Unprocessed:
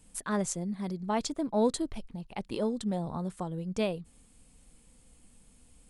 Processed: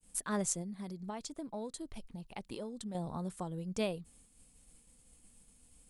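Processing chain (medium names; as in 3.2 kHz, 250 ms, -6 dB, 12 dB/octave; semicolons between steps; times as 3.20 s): expander -55 dBFS; treble shelf 5.9 kHz +8.5 dB; 0.61–2.95 s: compression 6:1, threshold -35 dBFS, peak gain reduction 13.5 dB; trim -4.5 dB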